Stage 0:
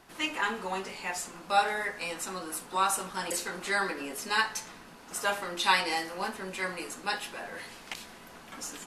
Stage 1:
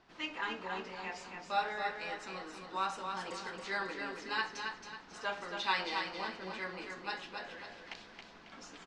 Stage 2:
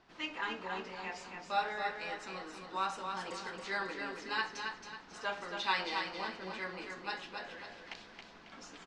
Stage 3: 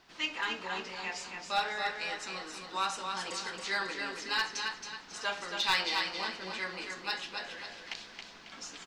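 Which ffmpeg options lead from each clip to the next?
-af "lowpass=f=5400:w=0.5412,lowpass=f=5400:w=1.3066,aecho=1:1:273|546|819|1092|1365:0.531|0.212|0.0849|0.034|0.0136,volume=0.398"
-af anull
-af "highshelf=f=2400:g=12,aeval=exprs='clip(val(0),-1,0.0708)':c=same"

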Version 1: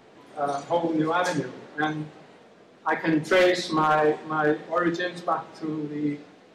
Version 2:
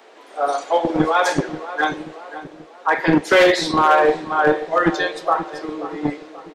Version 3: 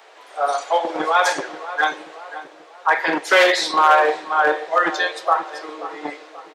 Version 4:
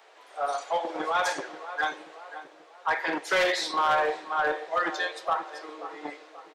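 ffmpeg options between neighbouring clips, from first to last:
-filter_complex "[0:a]acrossover=split=340|850|4500[s0][s1][s2][s3];[s0]acrusher=bits=3:mix=0:aa=0.5[s4];[s4][s1][s2][s3]amix=inputs=4:normalize=0,asplit=2[s5][s6];[s6]adelay=533,lowpass=f=1400:p=1,volume=0.237,asplit=2[s7][s8];[s8]adelay=533,lowpass=f=1400:p=1,volume=0.51,asplit=2[s9][s10];[s10]adelay=533,lowpass=f=1400:p=1,volume=0.51,asplit=2[s11][s12];[s12]adelay=533,lowpass=f=1400:p=1,volume=0.51,asplit=2[s13][s14];[s14]adelay=533,lowpass=f=1400:p=1,volume=0.51[s15];[s5][s7][s9][s11][s13][s15]amix=inputs=6:normalize=0,volume=2.37"
-af "highpass=620,volume=1.26"
-af "asoftclip=type=tanh:threshold=0.376,volume=0.398"

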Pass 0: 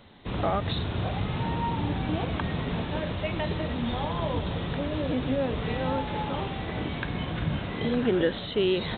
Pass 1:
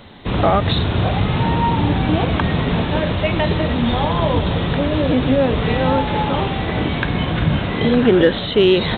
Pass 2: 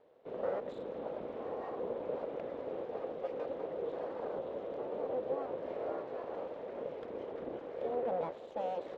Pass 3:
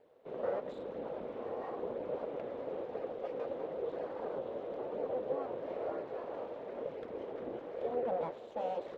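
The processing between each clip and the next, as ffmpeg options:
-af "acontrast=71,volume=1.78"
-af "aeval=exprs='abs(val(0))':c=same,bandpass=f=510:t=q:w=4.6:csg=0,volume=0.422"
-af "flanger=delay=0.4:depth=8.3:regen=-50:speed=1:shape=sinusoidal,volume=1.58"

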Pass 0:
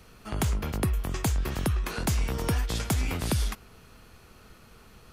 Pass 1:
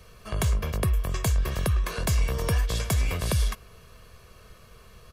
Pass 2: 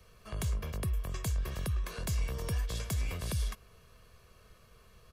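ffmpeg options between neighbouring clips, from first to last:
-af "aecho=1:1:1.8:0.61"
-filter_complex "[0:a]acrossover=split=380|3000[s0][s1][s2];[s1]acompressor=threshold=0.02:ratio=6[s3];[s0][s3][s2]amix=inputs=3:normalize=0,volume=0.376"

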